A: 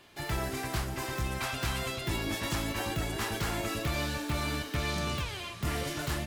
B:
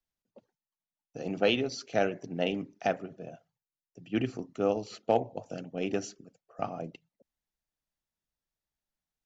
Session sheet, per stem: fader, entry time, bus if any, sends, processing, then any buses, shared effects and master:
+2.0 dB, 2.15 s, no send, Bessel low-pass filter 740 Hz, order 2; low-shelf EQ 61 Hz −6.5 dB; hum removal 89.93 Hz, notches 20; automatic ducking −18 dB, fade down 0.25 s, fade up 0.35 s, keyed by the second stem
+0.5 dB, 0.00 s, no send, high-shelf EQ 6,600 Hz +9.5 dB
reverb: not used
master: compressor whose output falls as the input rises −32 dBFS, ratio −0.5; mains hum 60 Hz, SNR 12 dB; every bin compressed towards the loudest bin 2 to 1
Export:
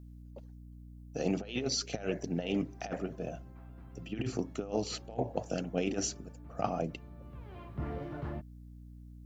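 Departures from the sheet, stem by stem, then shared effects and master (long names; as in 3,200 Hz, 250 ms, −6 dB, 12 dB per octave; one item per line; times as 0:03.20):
stem A +2.0 dB → −6.0 dB
master: missing every bin compressed towards the loudest bin 2 to 1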